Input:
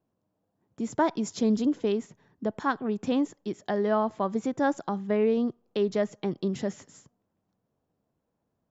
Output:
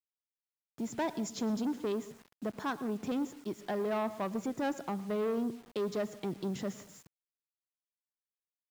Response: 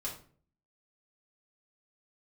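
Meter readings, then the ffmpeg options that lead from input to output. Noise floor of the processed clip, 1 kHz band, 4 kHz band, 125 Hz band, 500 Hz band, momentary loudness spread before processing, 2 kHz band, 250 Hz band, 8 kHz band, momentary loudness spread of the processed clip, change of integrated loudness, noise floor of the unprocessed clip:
under -85 dBFS, -7.5 dB, -4.5 dB, -6.5 dB, -7.5 dB, 8 LU, -6.5 dB, -7.0 dB, n/a, 8 LU, -7.5 dB, -80 dBFS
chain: -filter_complex "[0:a]asoftclip=type=tanh:threshold=-25.5dB,highpass=f=70:p=1,asplit=2[a][b];[1:a]atrim=start_sample=2205,adelay=110[c];[b][c]afir=irnorm=-1:irlink=0,volume=-17.5dB[d];[a][d]amix=inputs=2:normalize=0,acrusher=bits=8:mix=0:aa=0.000001,volume=-3dB"

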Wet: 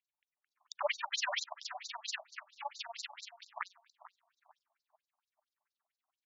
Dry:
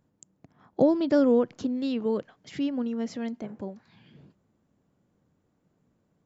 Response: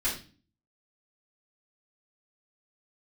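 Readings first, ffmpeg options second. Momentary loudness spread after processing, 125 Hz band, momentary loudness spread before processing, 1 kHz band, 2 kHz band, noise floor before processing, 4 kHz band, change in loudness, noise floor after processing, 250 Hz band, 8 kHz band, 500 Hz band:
14 LU, under -40 dB, 18 LU, -2.0 dB, +5.0 dB, -72 dBFS, +6.0 dB, -13.0 dB, under -85 dBFS, under -40 dB, n/a, -18.5 dB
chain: -filter_complex "[0:a]equalizer=f=680:t=o:w=0.37:g=-5.5,asplit=2[a][b];[b]acompressor=threshold=-35dB:ratio=6,volume=-1.5dB[c];[a][c]amix=inputs=2:normalize=0,aexciter=amount=7.8:drive=1.4:freq=3.9k,acrossover=split=2900[d][e];[e]adelay=490[f];[d][f]amix=inputs=2:normalize=0,acrusher=samples=17:mix=1:aa=0.000001:lfo=1:lforange=10.2:lforate=3.3,aeval=exprs='0.299*(cos(1*acos(clip(val(0)/0.299,-1,1)))-cos(1*PI/2))+0.0335*(cos(5*acos(clip(val(0)/0.299,-1,1)))-cos(5*PI/2))+0.0596*(cos(7*acos(clip(val(0)/0.299,-1,1)))-cos(7*PI/2))+0.0106*(cos(8*acos(clip(val(0)/0.299,-1,1)))-cos(8*PI/2))':c=same,volume=15dB,asoftclip=hard,volume=-15dB,tremolo=f=21:d=0.919,asplit=2[g][h];[h]adelay=442,lowpass=f=980:p=1,volume=-12dB,asplit=2[i][j];[j]adelay=442,lowpass=f=980:p=1,volume=0.38,asplit=2[k][l];[l]adelay=442,lowpass=f=980:p=1,volume=0.38,asplit=2[m][n];[n]adelay=442,lowpass=f=980:p=1,volume=0.38[o];[i][k][m][o]amix=inputs=4:normalize=0[p];[g][p]amix=inputs=2:normalize=0,afftfilt=real='re*between(b*sr/1024,800*pow(5400/800,0.5+0.5*sin(2*PI*4.4*pts/sr))/1.41,800*pow(5400/800,0.5+0.5*sin(2*PI*4.4*pts/sr))*1.41)':imag='im*between(b*sr/1024,800*pow(5400/800,0.5+0.5*sin(2*PI*4.4*pts/sr))/1.41,800*pow(5400/800,0.5+0.5*sin(2*PI*4.4*pts/sr))*1.41)':win_size=1024:overlap=0.75,volume=5dB"

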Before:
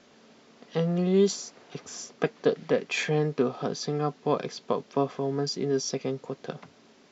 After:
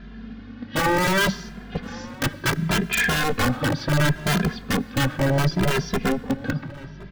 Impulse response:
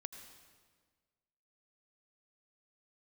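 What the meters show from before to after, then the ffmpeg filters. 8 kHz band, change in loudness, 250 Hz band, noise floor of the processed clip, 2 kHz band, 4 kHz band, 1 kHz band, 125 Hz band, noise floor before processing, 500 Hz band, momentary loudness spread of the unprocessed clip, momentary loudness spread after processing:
n/a, +5.5 dB, +5.5 dB, -40 dBFS, +14.0 dB, +9.0 dB, +8.5 dB, +9.0 dB, -58 dBFS, -1.0 dB, 15 LU, 15 LU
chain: -filter_complex "[0:a]lowpass=f=4.1k:w=0.5412,lowpass=f=4.1k:w=1.3066,aeval=exprs='(mod(11.9*val(0)+1,2)-1)/11.9':c=same,equalizer=f=1.6k:t=o:w=0.34:g=11,acontrast=83,lowshelf=f=310:t=q:w=1.5:g=12,aeval=exprs='val(0)+0.00891*(sin(2*PI*50*n/s)+sin(2*PI*2*50*n/s)/2+sin(2*PI*3*50*n/s)/3+sin(2*PI*4*50*n/s)/4+sin(2*PI*5*50*n/s)/5)':c=same,aeval=exprs='0.2*(abs(mod(val(0)/0.2+3,4)-2)-1)':c=same,asplit=2[a][b];[b]adelay=1067,lowpass=f=2.5k:p=1,volume=-18.5dB,asplit=2[c][d];[d]adelay=1067,lowpass=f=2.5k:p=1,volume=0.36,asplit=2[e][f];[f]adelay=1067,lowpass=f=2.5k:p=1,volume=0.36[g];[a][c][e][g]amix=inputs=4:normalize=0,asplit=2[h][i];[1:a]atrim=start_sample=2205[j];[i][j]afir=irnorm=-1:irlink=0,volume=-9dB[k];[h][k]amix=inputs=2:normalize=0,asplit=2[l][m];[m]adelay=2.5,afreqshift=0.69[n];[l][n]amix=inputs=2:normalize=1"

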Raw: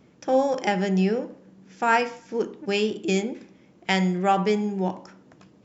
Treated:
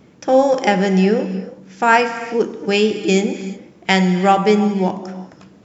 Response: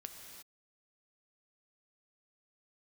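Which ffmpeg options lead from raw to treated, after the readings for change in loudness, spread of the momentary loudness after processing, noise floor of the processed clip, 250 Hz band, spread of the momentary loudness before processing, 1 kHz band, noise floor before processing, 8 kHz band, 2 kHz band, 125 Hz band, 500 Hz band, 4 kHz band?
+8.0 dB, 14 LU, -48 dBFS, +8.0 dB, 10 LU, +7.5 dB, -56 dBFS, n/a, +8.0 dB, +8.0 dB, +8.5 dB, +8.0 dB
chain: -filter_complex "[0:a]asplit=2[a][b];[1:a]atrim=start_sample=2205[c];[b][c]afir=irnorm=-1:irlink=0,volume=3dB[d];[a][d]amix=inputs=2:normalize=0,volume=3dB"

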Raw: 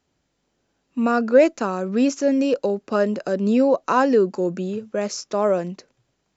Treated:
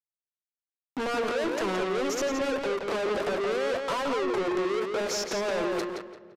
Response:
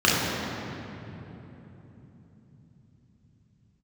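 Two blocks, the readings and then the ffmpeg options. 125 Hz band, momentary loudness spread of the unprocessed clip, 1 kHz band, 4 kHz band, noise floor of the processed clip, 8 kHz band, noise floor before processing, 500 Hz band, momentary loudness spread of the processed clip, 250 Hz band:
-12.0 dB, 10 LU, -6.5 dB, +2.5 dB, under -85 dBFS, n/a, -73 dBFS, -7.5 dB, 3 LU, -11.5 dB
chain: -filter_complex "[0:a]lowshelf=f=240:t=q:w=3:g=-14,bandreject=f=60:t=h:w=6,bandreject=f=120:t=h:w=6,bandreject=f=180:t=h:w=6,bandreject=f=240:t=h:w=6,bandreject=f=300:t=h:w=6,bandreject=f=360:t=h:w=6,dynaudnorm=f=110:g=9:m=11.5dB,alimiter=limit=-11.5dB:level=0:latency=1:release=91,acompressor=threshold=-24dB:ratio=6,aeval=exprs='val(0)*gte(abs(val(0)),0.00841)':c=same,asplit=2[a][b];[b]highpass=f=720:p=1,volume=22dB,asoftclip=type=tanh:threshold=-14.5dB[c];[a][c]amix=inputs=2:normalize=0,lowpass=f=1.4k:p=1,volume=-6dB,asoftclip=type=tanh:threshold=-33dB,asplit=2[d][e];[e]adelay=171,lowpass=f=4.5k:p=1,volume=-3.5dB,asplit=2[f][g];[g]adelay=171,lowpass=f=4.5k:p=1,volume=0.29,asplit=2[h][i];[i]adelay=171,lowpass=f=4.5k:p=1,volume=0.29,asplit=2[j][k];[k]adelay=171,lowpass=f=4.5k:p=1,volume=0.29[l];[d][f][h][j][l]amix=inputs=5:normalize=0,asplit=2[m][n];[1:a]atrim=start_sample=2205,adelay=16[o];[n][o]afir=irnorm=-1:irlink=0,volume=-41dB[p];[m][p]amix=inputs=2:normalize=0,aresample=32000,aresample=44100,volume=4.5dB"

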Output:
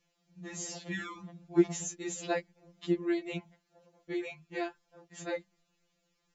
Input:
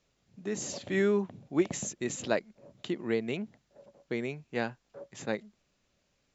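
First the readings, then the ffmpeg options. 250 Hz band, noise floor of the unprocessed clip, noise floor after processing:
-0.5 dB, -75 dBFS, -78 dBFS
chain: -af "afftfilt=real='re*2.83*eq(mod(b,8),0)':imag='im*2.83*eq(mod(b,8),0)':win_size=2048:overlap=0.75"

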